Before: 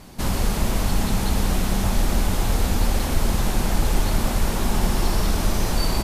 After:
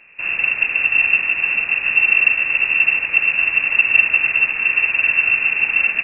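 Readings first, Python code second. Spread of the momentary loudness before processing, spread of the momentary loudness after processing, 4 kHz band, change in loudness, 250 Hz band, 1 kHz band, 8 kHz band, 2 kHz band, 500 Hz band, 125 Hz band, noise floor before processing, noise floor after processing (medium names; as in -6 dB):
1 LU, 4 LU, no reading, +10.0 dB, under -15 dB, -6.0 dB, under -40 dB, +21.5 dB, -11.5 dB, under -20 dB, -25 dBFS, -27 dBFS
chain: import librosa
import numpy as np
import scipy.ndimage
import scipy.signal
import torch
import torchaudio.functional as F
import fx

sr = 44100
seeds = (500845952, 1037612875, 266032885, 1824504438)

p1 = x + fx.echo_filtered(x, sr, ms=75, feedback_pct=72, hz=1100.0, wet_db=-7.5, dry=0)
p2 = fx.freq_invert(p1, sr, carrier_hz=2700)
p3 = fx.upward_expand(p2, sr, threshold_db=-26.0, expansion=1.5)
y = p3 * 10.0 ** (2.5 / 20.0)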